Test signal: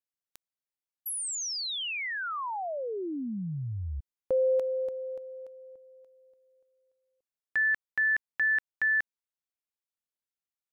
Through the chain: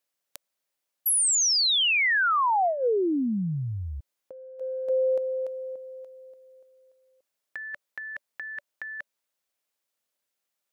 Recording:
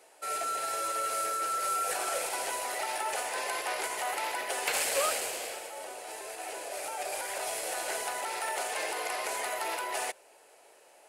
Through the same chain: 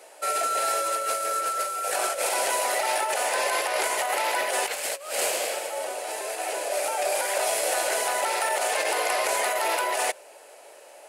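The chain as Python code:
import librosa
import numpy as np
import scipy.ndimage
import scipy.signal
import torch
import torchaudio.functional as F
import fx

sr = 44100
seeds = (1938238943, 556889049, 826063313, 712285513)

y = fx.highpass(x, sr, hz=250.0, slope=6)
y = fx.peak_eq(y, sr, hz=580.0, db=6.5, octaves=0.29)
y = fx.over_compress(y, sr, threshold_db=-33.0, ratio=-0.5)
y = F.gain(torch.from_numpy(y), 7.5).numpy()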